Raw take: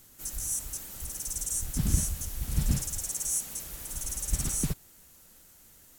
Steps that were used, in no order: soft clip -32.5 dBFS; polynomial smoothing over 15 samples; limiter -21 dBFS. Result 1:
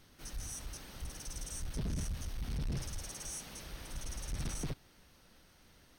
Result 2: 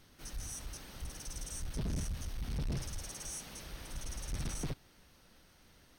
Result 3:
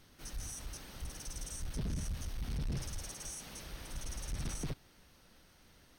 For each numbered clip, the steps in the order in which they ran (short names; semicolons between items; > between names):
polynomial smoothing > limiter > soft clip; polynomial smoothing > soft clip > limiter; limiter > polynomial smoothing > soft clip